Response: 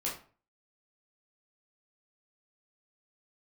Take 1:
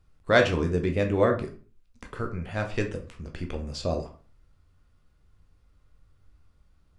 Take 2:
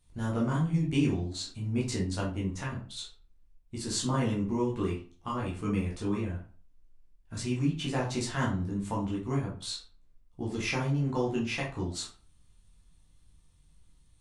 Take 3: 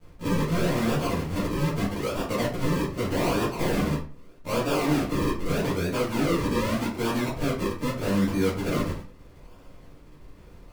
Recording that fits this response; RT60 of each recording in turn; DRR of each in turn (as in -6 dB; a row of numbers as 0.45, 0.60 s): 2; 0.40, 0.40, 0.40 s; 3.0, -5.5, -14.5 dB